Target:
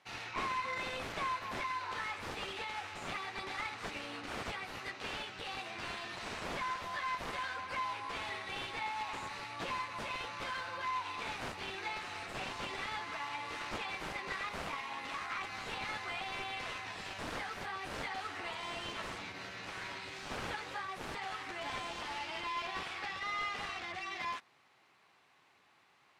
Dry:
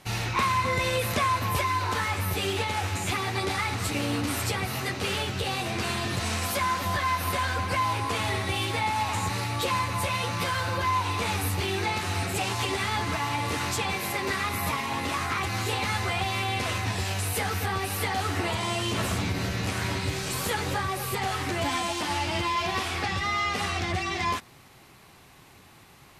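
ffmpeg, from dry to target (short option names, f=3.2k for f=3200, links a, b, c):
-af "aderivative,aeval=exprs='(mod(29.9*val(0)+1,2)-1)/29.9':c=same,adynamicsmooth=sensitivity=1.5:basefreq=1.6k,volume=8dB"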